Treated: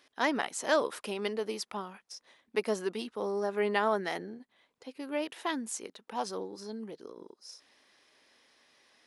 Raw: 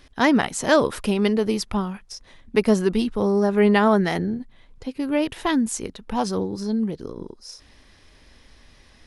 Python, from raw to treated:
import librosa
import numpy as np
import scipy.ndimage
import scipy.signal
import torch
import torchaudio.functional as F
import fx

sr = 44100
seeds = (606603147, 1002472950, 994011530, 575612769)

y = scipy.signal.sosfilt(scipy.signal.butter(2, 390.0, 'highpass', fs=sr, output='sos'), x)
y = F.gain(torch.from_numpy(y), -8.5).numpy()